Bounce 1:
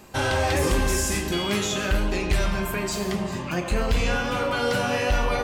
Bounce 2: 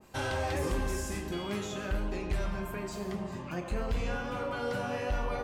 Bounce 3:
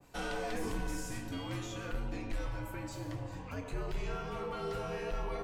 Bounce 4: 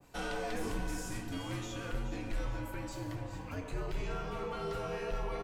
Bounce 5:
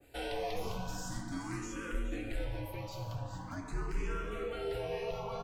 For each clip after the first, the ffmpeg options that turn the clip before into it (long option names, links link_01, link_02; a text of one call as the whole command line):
ffmpeg -i in.wav -af "adynamicequalizer=threshold=0.00794:dfrequency=1800:dqfactor=0.7:tfrequency=1800:tqfactor=0.7:attack=5:release=100:ratio=0.375:range=3.5:mode=cutabove:tftype=highshelf,volume=-9dB" out.wav
ffmpeg -i in.wav -af "afreqshift=-78,aeval=exprs='0.106*(cos(1*acos(clip(val(0)/0.106,-1,1)))-cos(1*PI/2))+0.00335*(cos(5*acos(clip(val(0)/0.106,-1,1)))-cos(5*PI/2))':channel_layout=same,volume=-5dB" out.wav
ffmpeg -i in.wav -af "aecho=1:1:425|850|1275|1700|2125:0.251|0.128|0.0653|0.0333|0.017" out.wav
ffmpeg -i in.wav -filter_complex "[0:a]asplit=2[link_01][link_02];[link_02]afreqshift=0.44[link_03];[link_01][link_03]amix=inputs=2:normalize=1,volume=2.5dB" out.wav